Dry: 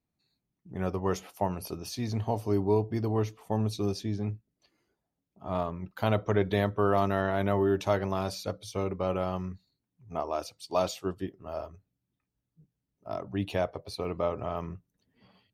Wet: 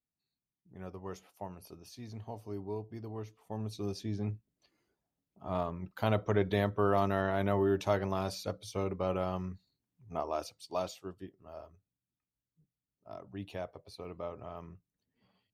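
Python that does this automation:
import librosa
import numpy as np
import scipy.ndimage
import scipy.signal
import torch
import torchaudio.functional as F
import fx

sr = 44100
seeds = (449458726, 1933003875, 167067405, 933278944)

y = fx.gain(x, sr, db=fx.line((3.27, -13.5), (4.23, -3.0), (10.45, -3.0), (11.07, -11.0)))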